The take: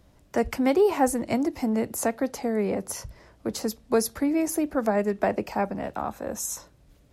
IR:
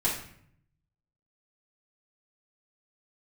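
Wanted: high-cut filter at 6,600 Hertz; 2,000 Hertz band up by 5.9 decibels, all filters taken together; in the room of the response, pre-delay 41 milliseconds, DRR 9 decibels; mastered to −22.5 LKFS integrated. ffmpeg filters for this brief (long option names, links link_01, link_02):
-filter_complex "[0:a]lowpass=6600,equalizer=frequency=2000:width_type=o:gain=7,asplit=2[link_01][link_02];[1:a]atrim=start_sample=2205,adelay=41[link_03];[link_02][link_03]afir=irnorm=-1:irlink=0,volume=-18dB[link_04];[link_01][link_04]amix=inputs=2:normalize=0,volume=3dB"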